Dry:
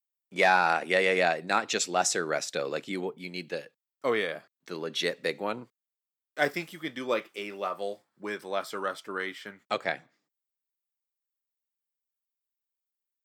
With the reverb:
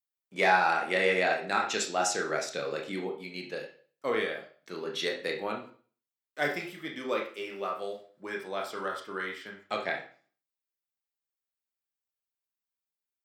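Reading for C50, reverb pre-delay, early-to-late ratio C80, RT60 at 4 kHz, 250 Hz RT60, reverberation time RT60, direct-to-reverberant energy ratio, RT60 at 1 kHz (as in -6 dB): 8.0 dB, 23 ms, 12.5 dB, 0.40 s, 0.45 s, 0.40 s, 0.5 dB, 0.40 s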